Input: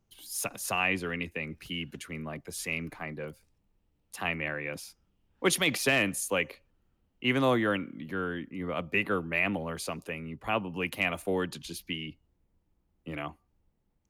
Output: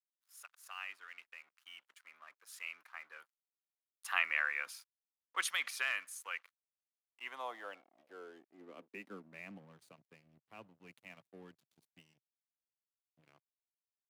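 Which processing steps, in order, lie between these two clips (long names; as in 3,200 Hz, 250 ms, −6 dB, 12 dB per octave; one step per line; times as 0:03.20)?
source passing by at 0:04.32, 8 m/s, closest 4.4 metres
dead-zone distortion −59.5 dBFS
high-pass filter sweep 1,300 Hz → 130 Hz, 0:06.86–0:09.82
level −2.5 dB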